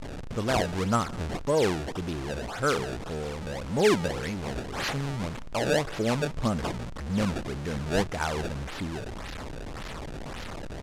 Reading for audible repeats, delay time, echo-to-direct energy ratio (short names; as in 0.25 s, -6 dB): 2, 0.183 s, -22.5 dB